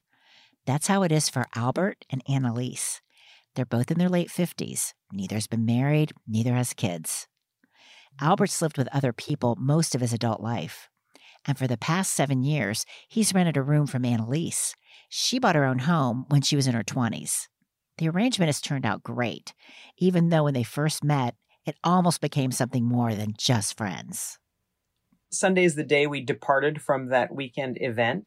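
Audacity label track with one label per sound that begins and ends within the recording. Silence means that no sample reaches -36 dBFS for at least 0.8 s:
8.190000	24.330000	sound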